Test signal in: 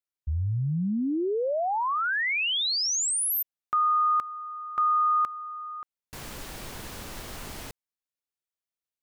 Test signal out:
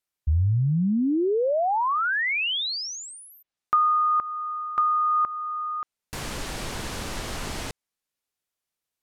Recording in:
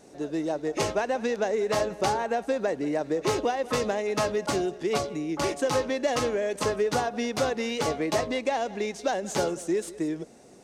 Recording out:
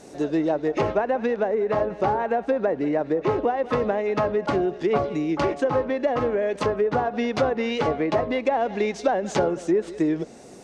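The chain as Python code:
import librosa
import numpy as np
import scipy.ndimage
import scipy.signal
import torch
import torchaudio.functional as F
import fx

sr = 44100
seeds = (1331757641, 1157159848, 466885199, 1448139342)

y = fx.env_lowpass_down(x, sr, base_hz=1400.0, full_db=-22.0)
y = fx.rider(y, sr, range_db=3, speed_s=0.5)
y = F.gain(torch.from_numpy(y), 4.5).numpy()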